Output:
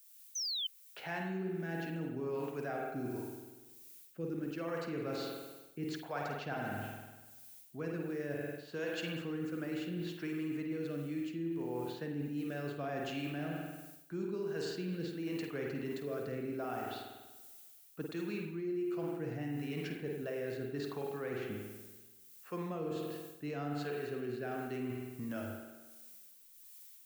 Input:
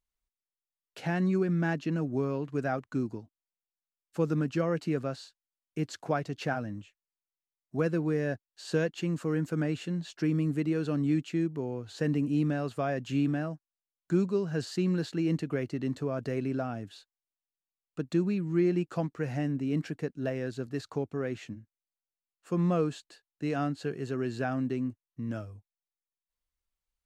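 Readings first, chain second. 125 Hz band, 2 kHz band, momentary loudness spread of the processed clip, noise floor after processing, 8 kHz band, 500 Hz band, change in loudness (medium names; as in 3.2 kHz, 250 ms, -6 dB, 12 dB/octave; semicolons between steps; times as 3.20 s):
-11.5 dB, -4.5 dB, 14 LU, -59 dBFS, +0.5 dB, -6.5 dB, -8.5 dB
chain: rotary cabinet horn 0.75 Hz; bass shelf 460 Hz -8.5 dB; level-controlled noise filter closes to 2.4 kHz, open at -29.5 dBFS; added noise violet -62 dBFS; harmonic tremolo 1.4 Hz, depth 50%, crossover 420 Hz; on a send: flutter echo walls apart 8.7 m, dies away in 0.29 s; on the sum: spring tank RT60 1.2 s, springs 48 ms, chirp 35 ms, DRR 1 dB; painted sound fall, 0.35–0.67 s, 3–6.3 kHz -38 dBFS; reverse; compression 6:1, threshold -43 dBFS, peak gain reduction 16.5 dB; reverse; trim +7 dB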